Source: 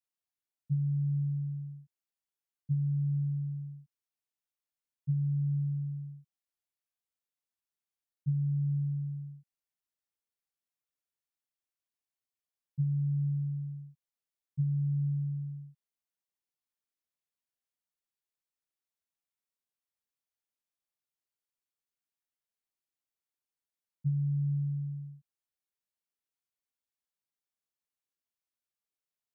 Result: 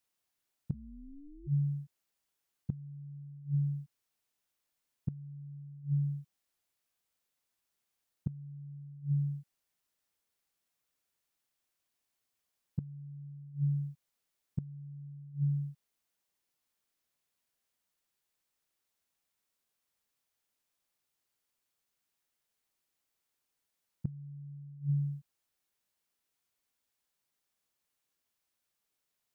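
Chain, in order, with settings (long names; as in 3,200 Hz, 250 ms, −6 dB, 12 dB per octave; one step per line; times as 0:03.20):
0:00.73–0:01.46: ring modulation 72 Hz → 200 Hz
gate with flip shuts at −30 dBFS, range −25 dB
level +9 dB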